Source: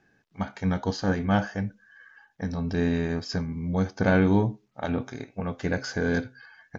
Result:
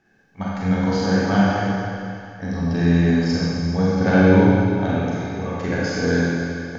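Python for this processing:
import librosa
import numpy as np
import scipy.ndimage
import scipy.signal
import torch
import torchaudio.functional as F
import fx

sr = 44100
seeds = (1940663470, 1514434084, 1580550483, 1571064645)

y = fx.rev_schroeder(x, sr, rt60_s=2.4, comb_ms=32, drr_db=-6.5)
y = fx.quant_float(y, sr, bits=8)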